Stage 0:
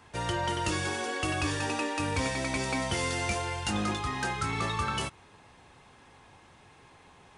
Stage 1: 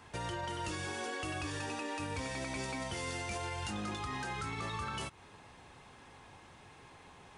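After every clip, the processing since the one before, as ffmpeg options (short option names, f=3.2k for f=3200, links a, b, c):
-af "alimiter=level_in=6dB:limit=-24dB:level=0:latency=1:release=169,volume=-6dB"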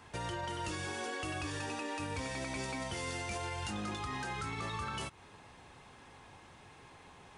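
-af anull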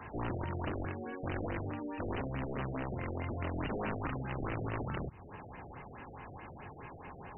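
-filter_complex "[0:a]acrossover=split=250[a][b];[b]acompressor=threshold=-53dB:ratio=5[c];[a][c]amix=inputs=2:normalize=0,aeval=exprs='(mod(89.1*val(0)+1,2)-1)/89.1':c=same,afftfilt=real='re*lt(b*sr/1024,730*pow(3100/730,0.5+0.5*sin(2*PI*4.7*pts/sr)))':imag='im*lt(b*sr/1024,730*pow(3100/730,0.5+0.5*sin(2*PI*4.7*pts/sr)))':win_size=1024:overlap=0.75,volume=9.5dB"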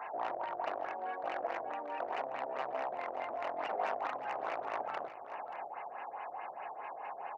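-af "asoftclip=type=tanh:threshold=-32.5dB,highpass=f=710:t=q:w=3.4,aecho=1:1:581:0.251,volume=1dB"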